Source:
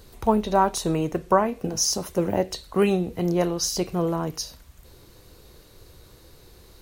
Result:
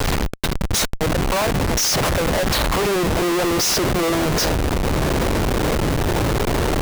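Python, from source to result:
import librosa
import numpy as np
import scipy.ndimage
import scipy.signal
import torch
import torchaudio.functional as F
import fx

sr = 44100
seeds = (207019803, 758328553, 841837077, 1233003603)

y = x + 0.5 * 10.0 ** (-24.5 / 20.0) * np.sign(x)
y = fx.steep_highpass(y, sr, hz=fx.steps((0.0, 2000.0), (0.99, 490.0), (2.85, 240.0)), slope=36)
y = fx.schmitt(y, sr, flips_db=-26.5)
y = F.gain(torch.from_numpy(y), 8.0).numpy()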